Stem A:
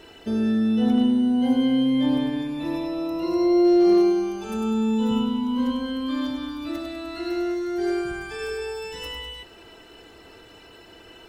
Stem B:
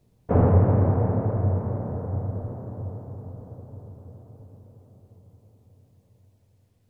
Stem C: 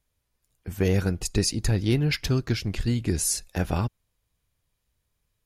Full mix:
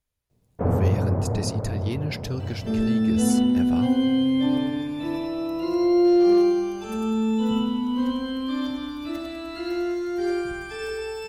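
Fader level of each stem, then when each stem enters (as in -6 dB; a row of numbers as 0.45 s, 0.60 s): -0.5 dB, -3.5 dB, -6.5 dB; 2.40 s, 0.30 s, 0.00 s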